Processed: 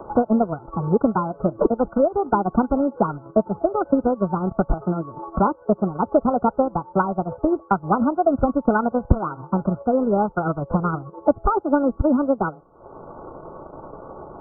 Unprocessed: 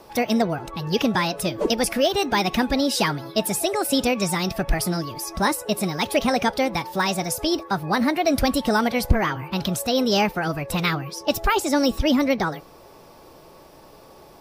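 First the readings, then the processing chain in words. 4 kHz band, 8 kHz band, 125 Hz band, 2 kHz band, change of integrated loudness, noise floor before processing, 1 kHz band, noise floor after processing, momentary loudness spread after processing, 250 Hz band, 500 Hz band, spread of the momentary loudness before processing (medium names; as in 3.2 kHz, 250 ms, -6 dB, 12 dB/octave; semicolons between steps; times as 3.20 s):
under -40 dB, under -40 dB, +2.0 dB, -9.0 dB, +1.0 dB, -48 dBFS, +2.0 dB, -48 dBFS, 9 LU, +2.0 dB, +2.5 dB, 5 LU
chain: transient shaper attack +7 dB, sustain -11 dB; brick-wall FIR low-pass 1.5 kHz; three bands compressed up and down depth 40%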